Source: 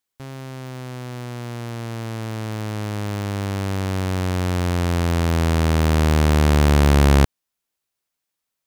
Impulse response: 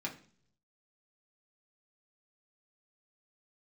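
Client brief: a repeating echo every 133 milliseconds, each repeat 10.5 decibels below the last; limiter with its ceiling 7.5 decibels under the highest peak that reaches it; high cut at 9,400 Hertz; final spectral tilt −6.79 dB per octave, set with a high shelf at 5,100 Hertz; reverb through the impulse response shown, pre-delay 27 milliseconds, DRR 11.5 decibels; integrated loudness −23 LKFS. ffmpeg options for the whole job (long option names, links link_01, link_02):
-filter_complex "[0:a]lowpass=9400,highshelf=frequency=5100:gain=-9,alimiter=limit=-15.5dB:level=0:latency=1,aecho=1:1:133|266|399:0.299|0.0896|0.0269,asplit=2[link_01][link_02];[1:a]atrim=start_sample=2205,adelay=27[link_03];[link_02][link_03]afir=irnorm=-1:irlink=0,volume=-13dB[link_04];[link_01][link_04]amix=inputs=2:normalize=0,volume=1dB"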